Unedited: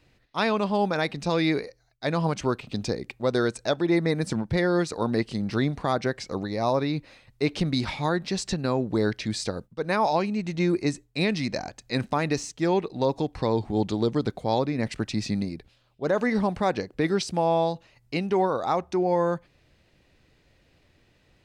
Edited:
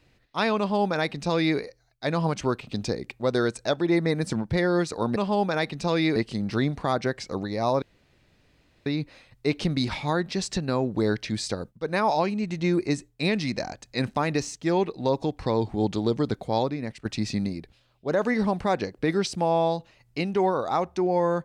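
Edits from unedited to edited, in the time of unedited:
0.58–1.58 copy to 5.16
6.82 insert room tone 1.04 s
14.53–15.01 fade out, to -14 dB

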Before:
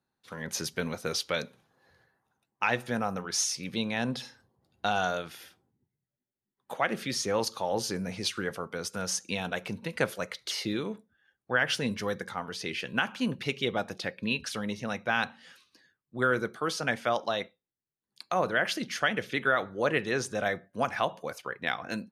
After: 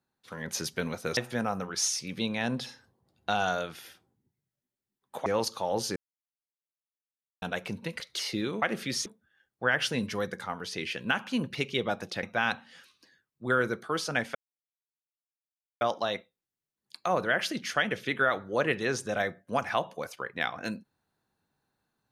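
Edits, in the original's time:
1.17–2.73 cut
6.82–7.26 move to 10.94
7.96–9.42 mute
10–10.32 cut
14.11–14.95 cut
17.07 insert silence 1.46 s

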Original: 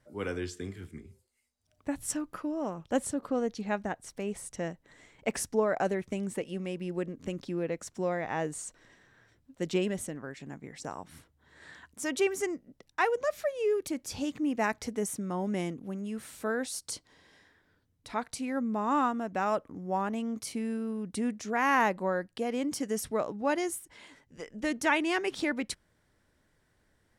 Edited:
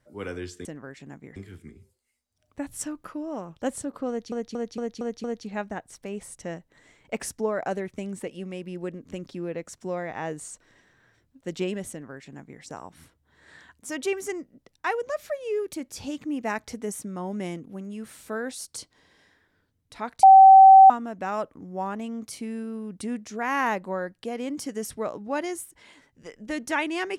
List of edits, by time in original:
3.38 stutter 0.23 s, 6 plays
10.05–10.76 copy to 0.65
18.37–19.04 bleep 770 Hz -7 dBFS

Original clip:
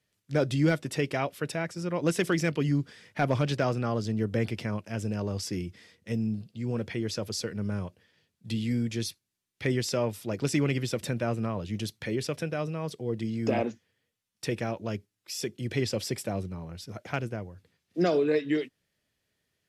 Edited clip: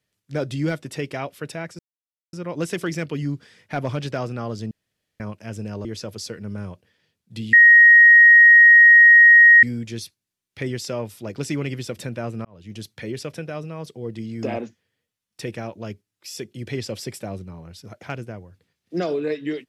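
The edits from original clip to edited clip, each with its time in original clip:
1.79 insert silence 0.54 s
4.17–4.66 room tone
5.31–6.99 cut
8.67 add tone 1880 Hz -6.5 dBFS 2.10 s
11.49–11.92 fade in

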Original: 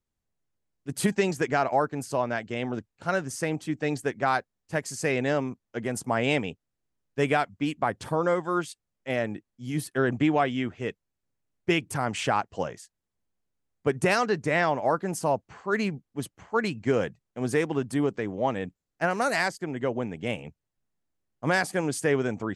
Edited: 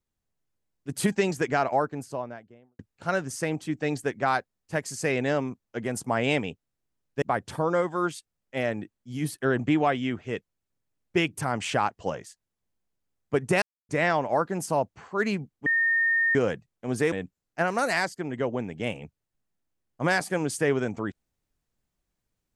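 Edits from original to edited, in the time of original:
1.62–2.79 studio fade out
7.22–7.75 cut
14.15–14.42 mute
16.19–16.88 bleep 1830 Hz -20 dBFS
17.65–18.55 cut

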